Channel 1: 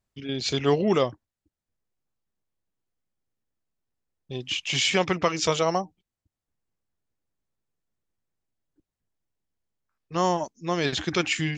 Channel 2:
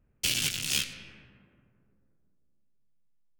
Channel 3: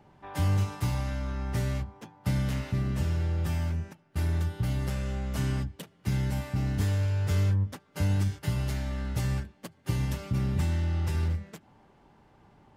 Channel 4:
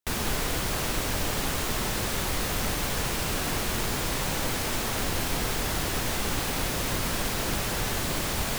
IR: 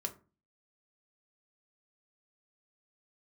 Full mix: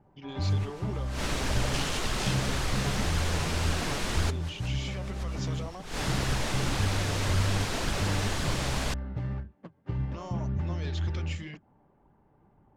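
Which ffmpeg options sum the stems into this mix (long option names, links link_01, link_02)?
-filter_complex "[0:a]alimiter=limit=-21.5dB:level=0:latency=1:release=349,asoftclip=type=tanh:threshold=-24dB,volume=-3dB,asplit=2[link_01][link_02];[1:a]adelay=1500,volume=-4dB[link_03];[2:a]adynamicsmooth=sensitivity=1.5:basefreq=1400,volume=1dB[link_04];[3:a]adelay=350,volume=2.5dB[link_05];[link_02]apad=whole_len=394164[link_06];[link_05][link_06]sidechaincompress=threshold=-53dB:ratio=16:attack=5.7:release=128[link_07];[link_01][link_03][link_04][link_07]amix=inputs=4:normalize=0,lowpass=7500,flanger=delay=0.6:depth=6.5:regen=61:speed=1.9:shape=sinusoidal"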